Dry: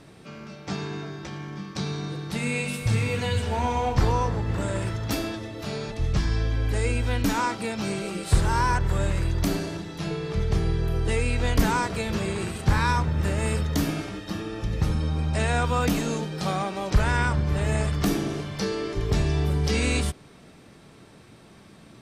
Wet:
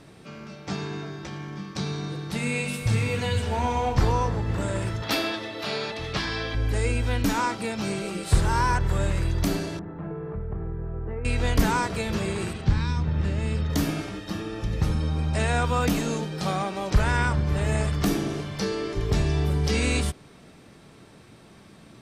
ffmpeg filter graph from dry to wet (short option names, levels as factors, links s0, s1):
-filter_complex "[0:a]asettb=1/sr,asplit=3[s0][s1][s2];[s0]atrim=end=5.024[s3];[s1]atrim=start=5.02:end=6.55,asetpts=PTS-STARTPTS,afade=t=in:d=0.004:c=qsin,afade=t=out:st=1.526:d=0.004:c=qsin,highpass=f=630:p=1,highshelf=f=5300:t=q:w=1.5:g=-6.5,acontrast=73[s4];[s2]atrim=start=6.546[s5];[s3][s4]acrossfade=d=0.004:c1=hsin:c2=qsin[s6];[s6][s5]acrossfade=d=0.004:c1=qsin:c2=hsin,asettb=1/sr,asplit=3[s7][s8][s9];[s7]atrim=end=9.794[s10];[s8]atrim=start=9.79:end=11.25,asetpts=PTS-STARTPTS,afade=t=in:d=0.004:c=qsin,afade=t=out:st=1.456:d=0.004:c=qsin,lowpass=f=1500:w=0.5412,lowpass=f=1500:w=1.3066,acompressor=threshold=0.0282:ratio=2.5:attack=3.2:release=140:knee=1:detection=peak[s11];[s9]atrim=start=11.246[s12];[s10][s11]acrossfade=d=0.004:c1=hsin:c2=qsin[s13];[s13][s12]acrossfade=d=0.004:c1=qsin:c2=hsin,asettb=1/sr,asplit=3[s14][s15][s16];[s14]atrim=end=12.534[s17];[s15]atrim=start=12.53:end=13.7,asetpts=PTS-STARTPTS,afade=t=in:d=0.004:c=qsin,afade=t=out:st=1.166:d=0.004:c=qsin,lowpass=4300,acrossover=split=330|3000[s18][s19][s20];[s19]acompressor=threshold=0.0126:ratio=4:attack=3.2:release=140:knee=2.83:detection=peak[s21];[s18][s21][s20]amix=inputs=3:normalize=0[s22];[s16]atrim=start=13.696[s23];[s17][s22]acrossfade=d=0.004:c1=hsin:c2=qsin[s24];[s24][s23]acrossfade=d=0.004:c1=qsin:c2=hsin"